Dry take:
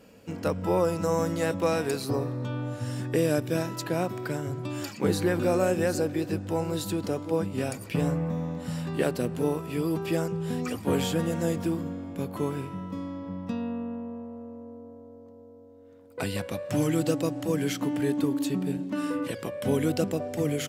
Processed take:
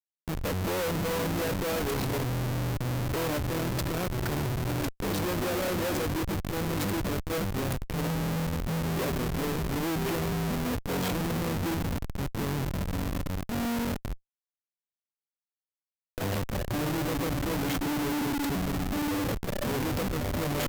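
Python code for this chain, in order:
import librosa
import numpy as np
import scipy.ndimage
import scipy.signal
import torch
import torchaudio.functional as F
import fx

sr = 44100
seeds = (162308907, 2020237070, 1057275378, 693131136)

y = fx.schmitt(x, sr, flips_db=-32.0)
y = fx.peak_eq(y, sr, hz=14000.0, db=8.0, octaves=0.34)
y = fx.transformer_sat(y, sr, knee_hz=64.0)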